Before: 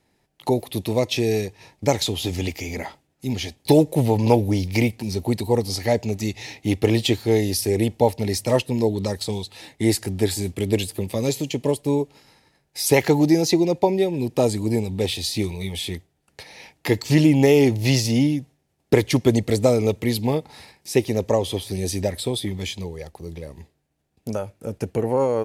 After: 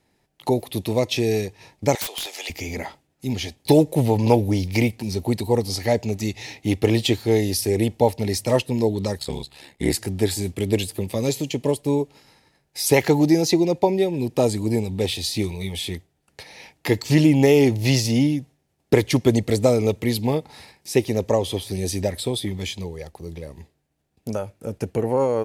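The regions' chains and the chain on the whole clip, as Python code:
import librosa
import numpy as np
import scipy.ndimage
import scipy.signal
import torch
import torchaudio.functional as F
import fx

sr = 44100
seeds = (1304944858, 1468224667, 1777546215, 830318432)

y = fx.chain(x, sr, fx.highpass(hz=610.0, slope=24),
    fx.overflow_wrap(gain_db=21.5),
    fx.band_squash(depth_pct=70), at=(1.95, 2.5))
y = fx.chain(y, sr, fx.notch(hz=5900.0, q=6.4),
    fx.dynamic_eq(hz=1500.0, q=1.5, threshold_db=-45.0, ratio=4.0, max_db=7),
    fx.ring_mod(carrier_hz=35.0), at=(9.18, 9.94))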